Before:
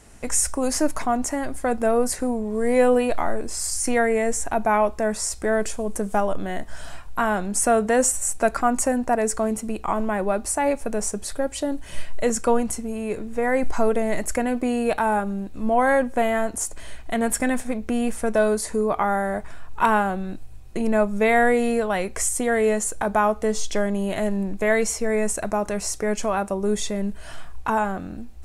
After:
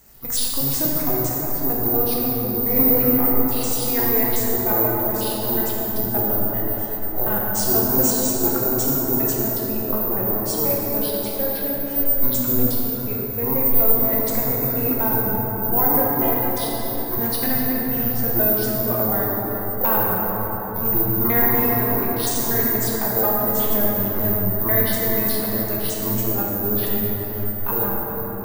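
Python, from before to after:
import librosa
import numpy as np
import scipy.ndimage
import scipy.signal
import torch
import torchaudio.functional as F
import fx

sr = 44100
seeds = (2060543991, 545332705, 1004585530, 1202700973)

y = fx.pitch_trill(x, sr, semitones=-11.0, every_ms=121)
y = (np.kron(y[::3], np.eye(3)[0]) * 3)[:len(y)]
y = fx.rev_plate(y, sr, seeds[0], rt60_s=5.0, hf_ratio=0.35, predelay_ms=0, drr_db=-5.0)
y = F.gain(torch.from_numpy(y), -7.5).numpy()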